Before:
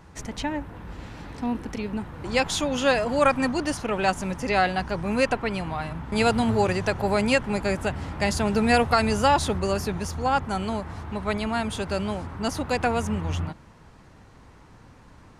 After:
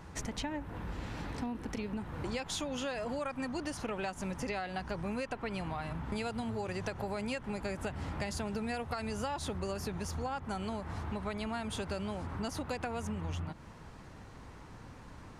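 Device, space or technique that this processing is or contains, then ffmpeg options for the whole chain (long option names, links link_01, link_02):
serial compression, leveller first: -af "acompressor=threshold=-24dB:ratio=2.5,acompressor=threshold=-35dB:ratio=5"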